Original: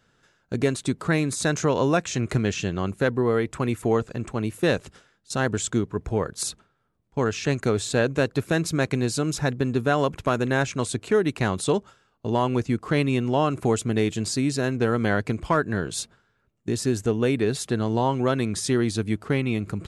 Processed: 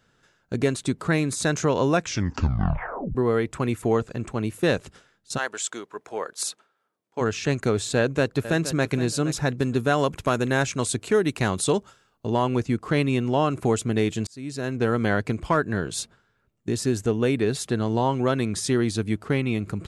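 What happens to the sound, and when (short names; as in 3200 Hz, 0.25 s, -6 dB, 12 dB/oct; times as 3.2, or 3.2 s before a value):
2 tape stop 1.15 s
5.37–7.2 HPF 780 Hz -> 350 Hz
7.97–8.87 echo throw 0.47 s, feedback 20%, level -13 dB
9.6–12.26 high shelf 5100 Hz +6.5 dB
14.27–14.87 fade in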